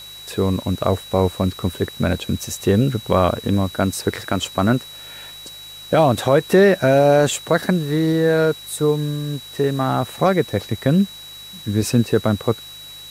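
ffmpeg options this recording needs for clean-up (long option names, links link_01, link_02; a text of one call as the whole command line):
ffmpeg -i in.wav -af "adeclick=threshold=4,bandreject=frequency=51.1:width_type=h:width=4,bandreject=frequency=102.2:width_type=h:width=4,bandreject=frequency=153.3:width_type=h:width=4,bandreject=frequency=3900:width=30,afwtdn=0.0071" out.wav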